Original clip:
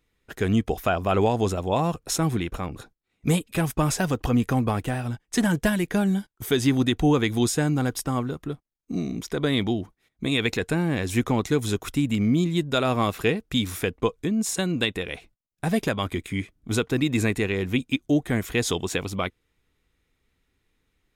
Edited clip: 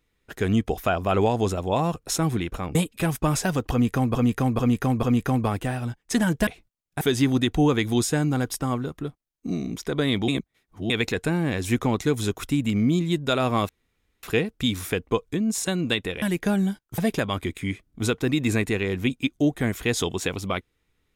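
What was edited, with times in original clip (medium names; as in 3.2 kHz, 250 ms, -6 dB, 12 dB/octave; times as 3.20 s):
2.75–3.30 s: delete
4.26–4.70 s: loop, 4 plays
5.70–6.46 s: swap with 15.13–15.67 s
9.73–10.35 s: reverse
13.14 s: insert room tone 0.54 s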